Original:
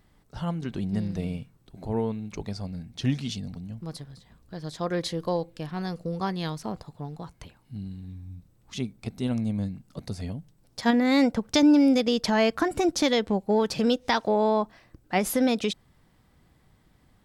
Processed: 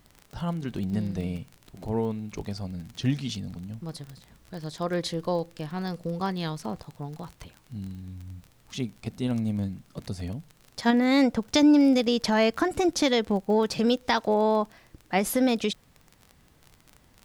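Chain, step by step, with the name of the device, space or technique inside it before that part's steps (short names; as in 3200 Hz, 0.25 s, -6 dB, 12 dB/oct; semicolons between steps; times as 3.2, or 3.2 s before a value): vinyl LP (crackle 30/s -34 dBFS; pink noise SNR 37 dB)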